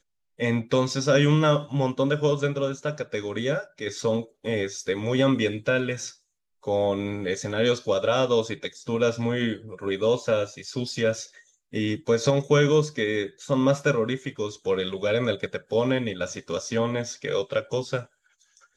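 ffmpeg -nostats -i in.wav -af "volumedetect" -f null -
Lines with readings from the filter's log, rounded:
mean_volume: -25.4 dB
max_volume: -8.0 dB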